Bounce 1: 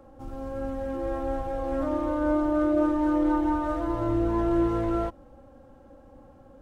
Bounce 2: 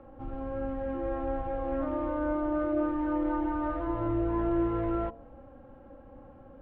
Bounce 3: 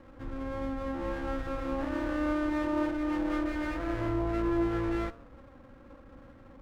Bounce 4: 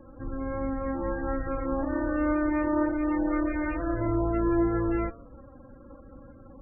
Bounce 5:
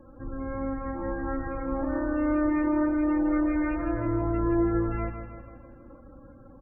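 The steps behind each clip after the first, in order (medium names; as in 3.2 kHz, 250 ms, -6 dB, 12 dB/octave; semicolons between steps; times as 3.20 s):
in parallel at +2.5 dB: compression, threshold -33 dBFS, peak gain reduction 13 dB; on the sum: low-pass 2.9 kHz 24 dB/octave; de-hum 76.02 Hz, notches 14; trim -6.5 dB
comb filter that takes the minimum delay 0.52 ms
loudest bins only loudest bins 32; trim +4 dB
feedback delay 159 ms, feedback 54%, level -8.5 dB; trim -1.5 dB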